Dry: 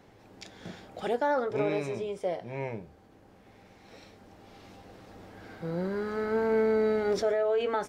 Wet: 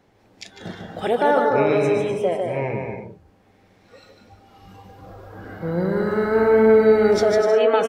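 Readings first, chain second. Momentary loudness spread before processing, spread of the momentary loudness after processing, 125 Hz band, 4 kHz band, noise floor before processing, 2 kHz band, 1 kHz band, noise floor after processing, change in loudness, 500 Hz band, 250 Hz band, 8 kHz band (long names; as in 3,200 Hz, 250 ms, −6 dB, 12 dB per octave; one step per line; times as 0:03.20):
20 LU, 19 LU, +11.0 dB, +9.5 dB, −57 dBFS, +10.5 dB, +10.5 dB, −57 dBFS, +11.0 dB, +11.0 dB, +11.0 dB, can't be measured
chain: bouncing-ball delay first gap 150 ms, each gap 0.65×, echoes 5
noise reduction from a noise print of the clip's start 11 dB
level +8.5 dB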